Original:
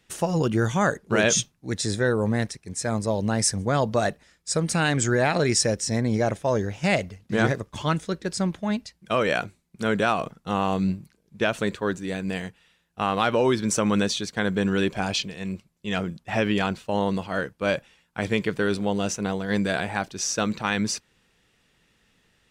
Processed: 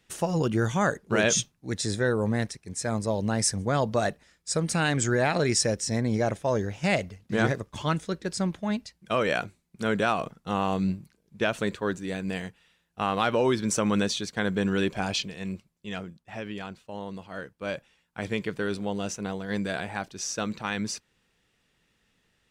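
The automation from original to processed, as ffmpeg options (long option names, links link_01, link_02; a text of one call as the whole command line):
ffmpeg -i in.wav -af "volume=5dB,afade=type=out:start_time=15.49:duration=0.67:silence=0.298538,afade=type=in:start_time=17.08:duration=1.19:silence=0.421697" out.wav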